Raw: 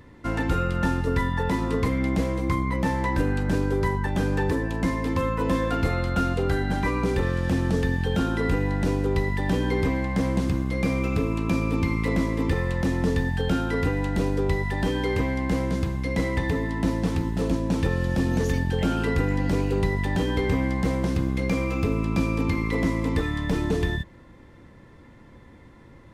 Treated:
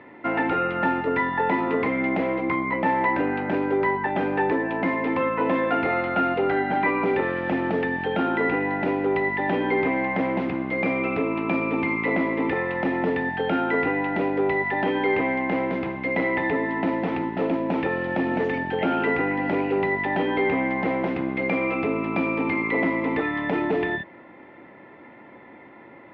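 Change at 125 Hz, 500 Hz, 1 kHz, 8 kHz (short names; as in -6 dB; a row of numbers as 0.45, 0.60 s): -11.0 dB, +4.0 dB, +6.5 dB, under -25 dB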